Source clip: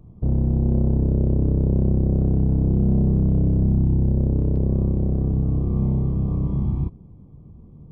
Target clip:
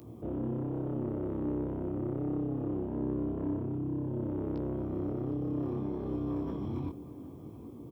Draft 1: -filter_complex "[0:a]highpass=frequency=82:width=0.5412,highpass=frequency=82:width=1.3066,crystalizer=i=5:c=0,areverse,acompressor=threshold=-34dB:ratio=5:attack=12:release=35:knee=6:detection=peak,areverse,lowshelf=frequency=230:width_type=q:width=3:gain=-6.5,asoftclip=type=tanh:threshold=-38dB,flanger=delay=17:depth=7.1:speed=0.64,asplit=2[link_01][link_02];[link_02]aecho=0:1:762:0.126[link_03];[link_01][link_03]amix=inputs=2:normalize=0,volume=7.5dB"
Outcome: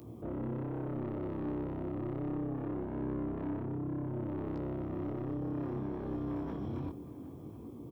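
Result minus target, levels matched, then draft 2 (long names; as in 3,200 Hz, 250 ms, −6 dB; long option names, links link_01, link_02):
soft clipping: distortion +6 dB
-filter_complex "[0:a]highpass=frequency=82:width=0.5412,highpass=frequency=82:width=1.3066,crystalizer=i=5:c=0,areverse,acompressor=threshold=-34dB:ratio=5:attack=12:release=35:knee=6:detection=peak,areverse,lowshelf=frequency=230:width_type=q:width=3:gain=-6.5,asoftclip=type=tanh:threshold=-31.5dB,flanger=delay=17:depth=7.1:speed=0.64,asplit=2[link_01][link_02];[link_02]aecho=0:1:762:0.126[link_03];[link_01][link_03]amix=inputs=2:normalize=0,volume=7.5dB"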